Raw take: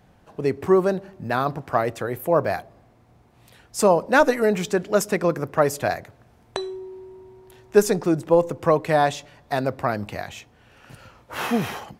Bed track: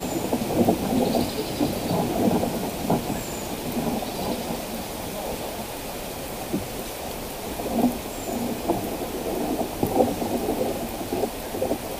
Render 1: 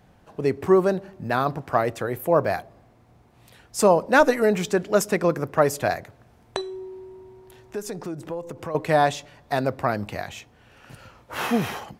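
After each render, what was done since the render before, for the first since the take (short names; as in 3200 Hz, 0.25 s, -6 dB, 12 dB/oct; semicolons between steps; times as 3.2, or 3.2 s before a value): 6.61–8.75 compressor 3:1, threshold -32 dBFS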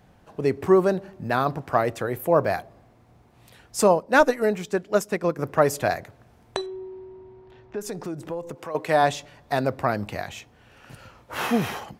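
3.84–5.39 upward expander, over -33 dBFS; 6.66–7.81 air absorption 210 m; 8.54–9.02 HPF 570 Hz -> 220 Hz 6 dB/oct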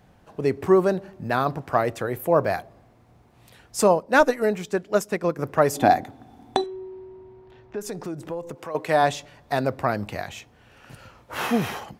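5.75–6.64 small resonant body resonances 270/770/3500 Hz, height 16 dB, ringing for 40 ms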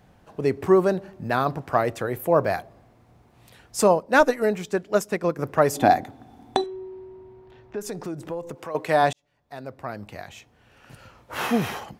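9.13–11.41 fade in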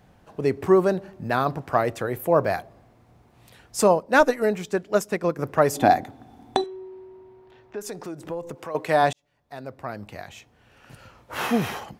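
6.64–8.24 low shelf 210 Hz -9 dB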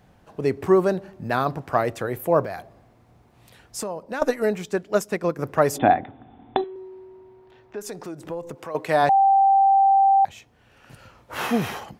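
2.44–4.22 compressor 4:1, threshold -28 dBFS; 5.78–6.76 steep low-pass 3600 Hz 96 dB/oct; 9.09–10.25 bleep 783 Hz -13 dBFS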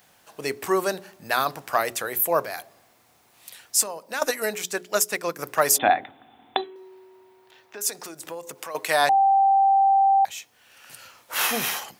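tilt +4.5 dB/oct; notches 60/120/180/240/300/360/420 Hz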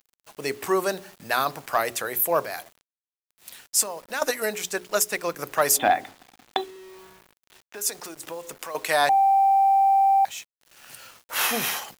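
requantised 8-bit, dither none; soft clip -7.5 dBFS, distortion -27 dB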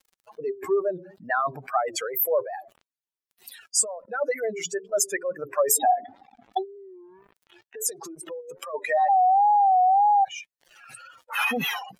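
spectral contrast raised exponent 3.1; wow and flutter 110 cents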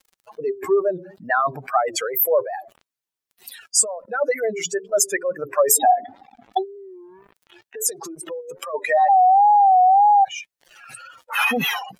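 gain +5 dB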